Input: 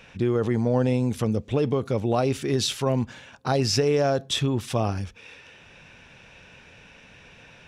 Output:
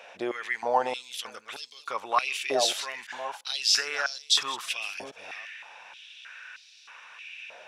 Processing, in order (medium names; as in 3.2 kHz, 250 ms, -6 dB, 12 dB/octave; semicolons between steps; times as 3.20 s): chunks repeated in reverse 341 ms, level -11.5 dB; step-sequenced high-pass 3.2 Hz 640–4400 Hz